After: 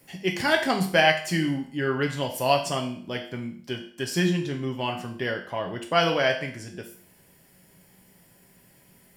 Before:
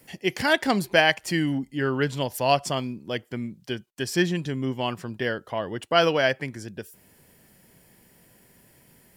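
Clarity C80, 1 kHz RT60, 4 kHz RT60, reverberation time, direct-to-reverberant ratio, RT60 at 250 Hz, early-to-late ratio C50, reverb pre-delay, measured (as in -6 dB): 13.0 dB, 0.55 s, 0.50 s, 0.55 s, 1.5 dB, 0.55 s, 9.0 dB, 4 ms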